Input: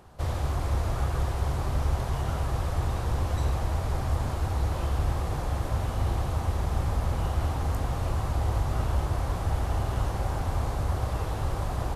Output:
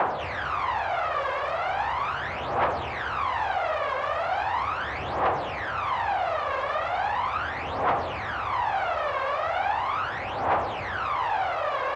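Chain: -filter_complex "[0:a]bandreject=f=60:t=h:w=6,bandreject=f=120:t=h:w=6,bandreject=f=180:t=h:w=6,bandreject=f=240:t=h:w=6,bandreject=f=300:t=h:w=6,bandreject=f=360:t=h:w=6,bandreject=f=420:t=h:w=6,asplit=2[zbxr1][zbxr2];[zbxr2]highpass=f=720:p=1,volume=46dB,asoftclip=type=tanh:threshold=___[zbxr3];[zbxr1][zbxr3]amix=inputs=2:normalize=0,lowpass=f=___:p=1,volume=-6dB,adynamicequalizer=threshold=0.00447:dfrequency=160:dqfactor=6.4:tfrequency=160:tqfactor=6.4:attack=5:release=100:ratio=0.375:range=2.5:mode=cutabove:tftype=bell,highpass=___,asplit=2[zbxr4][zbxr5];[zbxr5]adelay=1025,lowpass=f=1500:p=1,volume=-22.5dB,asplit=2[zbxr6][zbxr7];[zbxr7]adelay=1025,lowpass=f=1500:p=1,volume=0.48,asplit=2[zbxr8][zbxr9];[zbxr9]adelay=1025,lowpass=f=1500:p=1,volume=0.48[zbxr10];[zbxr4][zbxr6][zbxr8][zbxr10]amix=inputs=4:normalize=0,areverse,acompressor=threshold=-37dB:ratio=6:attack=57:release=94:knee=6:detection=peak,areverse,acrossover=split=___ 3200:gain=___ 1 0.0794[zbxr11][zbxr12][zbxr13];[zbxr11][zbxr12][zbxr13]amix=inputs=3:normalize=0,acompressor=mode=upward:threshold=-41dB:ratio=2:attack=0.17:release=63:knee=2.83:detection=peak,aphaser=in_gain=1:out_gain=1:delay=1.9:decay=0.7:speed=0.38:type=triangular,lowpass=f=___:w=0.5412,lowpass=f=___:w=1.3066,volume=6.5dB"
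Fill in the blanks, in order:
-14.5dB, 1800, 96, 550, 0.251, 7800, 7800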